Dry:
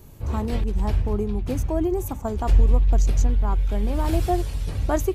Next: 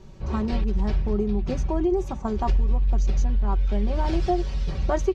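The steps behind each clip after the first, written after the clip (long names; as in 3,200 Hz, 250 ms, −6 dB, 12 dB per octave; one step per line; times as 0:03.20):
Chebyshev low-pass filter 5,500 Hz, order 3
comb filter 5.3 ms
downward compressor 4 to 1, threshold −18 dBFS, peak gain reduction 8 dB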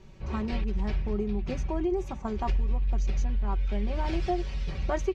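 parametric band 2,300 Hz +7 dB 0.94 octaves
level −5.5 dB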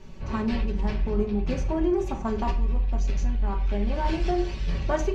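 in parallel at −5 dB: soft clipping −32 dBFS, distortion −9 dB
on the sum: convolution reverb RT60 0.45 s, pre-delay 3 ms, DRR 2 dB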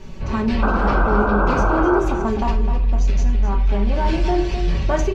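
in parallel at −0.5 dB: brickwall limiter −24.5 dBFS, peak gain reduction 11 dB
on the sum: sound drawn into the spectrogram noise, 0:00.62–0:02.00, 250–1,600 Hz −24 dBFS
slap from a distant wall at 44 metres, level −8 dB
level +2.5 dB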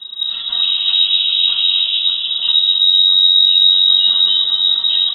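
phaser with its sweep stopped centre 590 Hz, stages 4
rectangular room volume 3,700 cubic metres, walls mixed, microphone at 1.8 metres
voice inversion scrambler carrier 3,800 Hz
level −1 dB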